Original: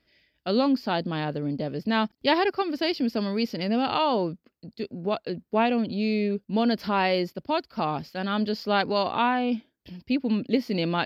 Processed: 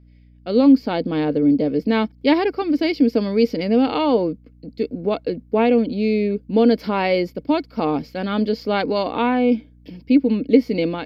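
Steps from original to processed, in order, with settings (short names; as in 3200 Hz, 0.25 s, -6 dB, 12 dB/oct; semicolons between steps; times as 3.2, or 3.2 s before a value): AGC gain up to 11.5 dB; small resonant body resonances 290/460/2200 Hz, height 14 dB, ringing for 45 ms; hum 60 Hz, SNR 30 dB; gain -9.5 dB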